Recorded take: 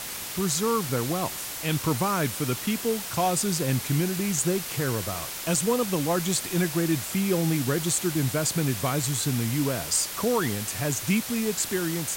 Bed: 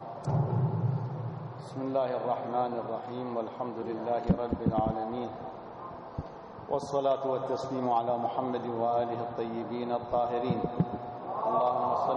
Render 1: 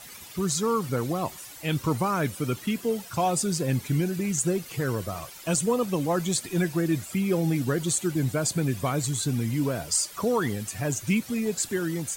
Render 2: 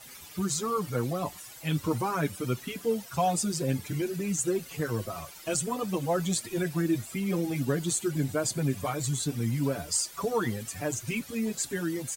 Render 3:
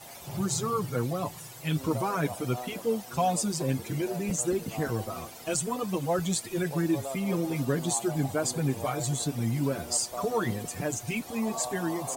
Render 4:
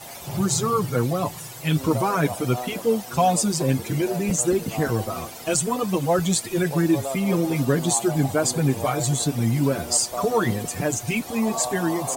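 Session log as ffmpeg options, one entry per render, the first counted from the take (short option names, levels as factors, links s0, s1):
-af "afftdn=nr=13:nf=-35"
-filter_complex "[0:a]asplit=2[s0][s1];[s1]adelay=5.9,afreqshift=2[s2];[s0][s2]amix=inputs=2:normalize=1"
-filter_complex "[1:a]volume=0.316[s0];[0:a][s0]amix=inputs=2:normalize=0"
-af "volume=2.24"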